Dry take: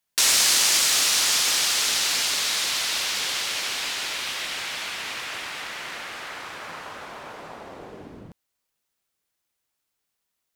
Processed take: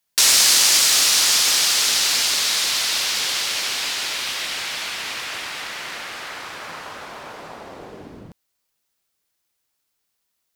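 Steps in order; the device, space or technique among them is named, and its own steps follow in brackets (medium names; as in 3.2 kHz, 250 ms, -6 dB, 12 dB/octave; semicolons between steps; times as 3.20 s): presence and air boost (peaking EQ 4.8 kHz +2.5 dB; treble shelf 9.7 kHz +3.5 dB); trim +2.5 dB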